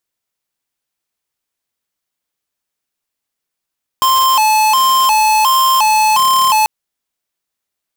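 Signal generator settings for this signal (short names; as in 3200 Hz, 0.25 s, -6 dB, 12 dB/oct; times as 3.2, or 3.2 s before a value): siren hi-lo 864–1050 Hz 1.4/s square -11 dBFS 2.64 s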